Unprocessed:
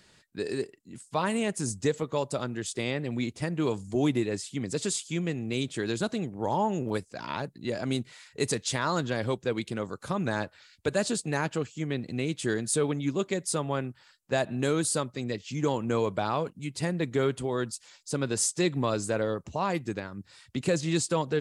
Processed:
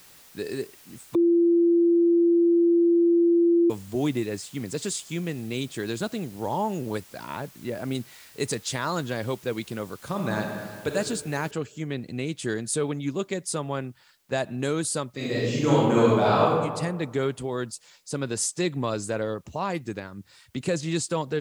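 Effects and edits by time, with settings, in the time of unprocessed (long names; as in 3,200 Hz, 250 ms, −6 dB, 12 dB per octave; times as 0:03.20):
0:01.15–0:03.70: beep over 341 Hz −16 dBFS
0:07.24–0:07.95: parametric band 5,800 Hz −14.5 dB 1.1 octaves
0:10.07–0:10.93: thrown reverb, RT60 1.8 s, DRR 2 dB
0:11.51: noise floor change −52 dB −70 dB
0:15.15–0:16.52: thrown reverb, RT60 1.4 s, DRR −8 dB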